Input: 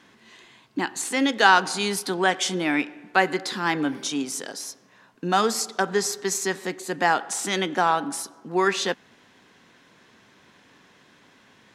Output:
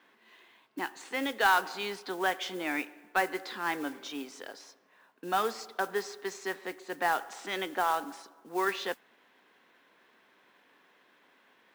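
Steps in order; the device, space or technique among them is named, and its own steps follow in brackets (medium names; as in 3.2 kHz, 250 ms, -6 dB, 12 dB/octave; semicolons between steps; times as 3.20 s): carbon microphone (band-pass 360–3300 Hz; saturation -8 dBFS, distortion -20 dB; modulation noise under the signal 18 dB); trim -6.5 dB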